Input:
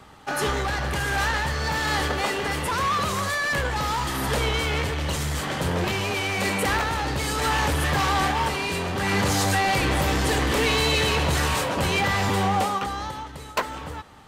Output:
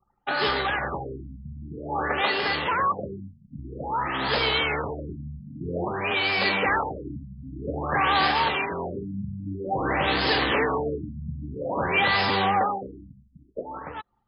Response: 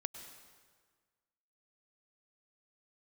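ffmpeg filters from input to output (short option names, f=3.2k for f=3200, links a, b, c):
-af "aemphasis=mode=production:type=bsi,anlmdn=2.51,afftfilt=real='re*lt(b*sr/1024,240*pow(5300/240,0.5+0.5*sin(2*PI*0.51*pts/sr)))':imag='im*lt(b*sr/1024,240*pow(5300/240,0.5+0.5*sin(2*PI*0.51*pts/sr)))':win_size=1024:overlap=0.75,volume=1.5dB"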